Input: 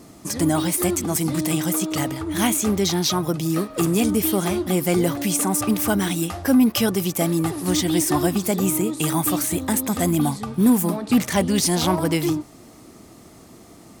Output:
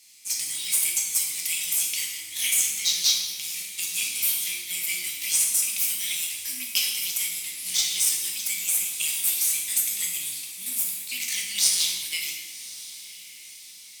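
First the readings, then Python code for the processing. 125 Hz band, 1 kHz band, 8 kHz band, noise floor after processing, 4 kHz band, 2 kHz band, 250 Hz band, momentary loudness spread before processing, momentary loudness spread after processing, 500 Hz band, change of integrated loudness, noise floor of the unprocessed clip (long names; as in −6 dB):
below −30 dB, below −25 dB, +3.0 dB, −45 dBFS, +3.0 dB, −1.5 dB, below −35 dB, 4 LU, 12 LU, below −30 dB, −2.5 dB, −46 dBFS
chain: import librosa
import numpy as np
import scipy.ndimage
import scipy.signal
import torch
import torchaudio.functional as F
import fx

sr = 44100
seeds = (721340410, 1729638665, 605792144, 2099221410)

p1 = scipy.signal.sosfilt(scipy.signal.ellip(4, 1.0, 40, 2200.0, 'highpass', fs=sr, output='sos'), x)
p2 = fx.cheby_harmonics(p1, sr, harmonics=(5, 7), levels_db=(-32, -33), full_scale_db=-9.0)
p3 = fx.quant_float(p2, sr, bits=2)
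p4 = p3 + fx.echo_diffused(p3, sr, ms=1074, feedback_pct=51, wet_db=-16, dry=0)
y = fx.rev_plate(p4, sr, seeds[0], rt60_s=1.1, hf_ratio=0.9, predelay_ms=0, drr_db=-1.0)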